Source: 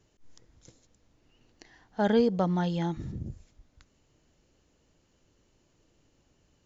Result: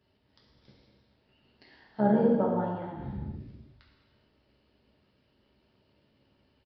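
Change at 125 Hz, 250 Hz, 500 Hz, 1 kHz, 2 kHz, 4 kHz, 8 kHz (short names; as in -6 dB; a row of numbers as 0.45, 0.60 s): -3.0 dB, +0.5 dB, 0.0 dB, +1.0 dB, -5.0 dB, under -10 dB, n/a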